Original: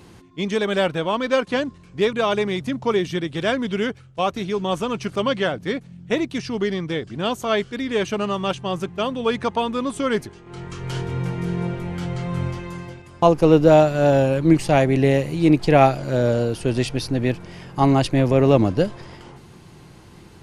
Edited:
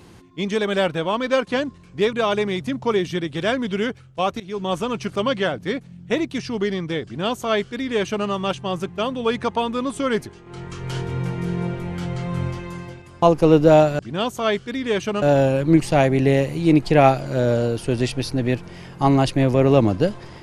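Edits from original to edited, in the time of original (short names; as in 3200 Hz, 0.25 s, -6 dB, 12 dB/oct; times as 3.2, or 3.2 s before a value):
4.4–4.79 fade in equal-power, from -19 dB
7.04–8.27 copy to 13.99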